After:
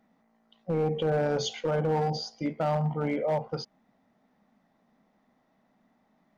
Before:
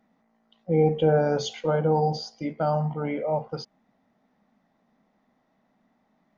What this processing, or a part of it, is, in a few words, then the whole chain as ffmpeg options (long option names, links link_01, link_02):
limiter into clipper: -af "alimiter=limit=-18dB:level=0:latency=1:release=108,asoftclip=type=hard:threshold=-21.5dB"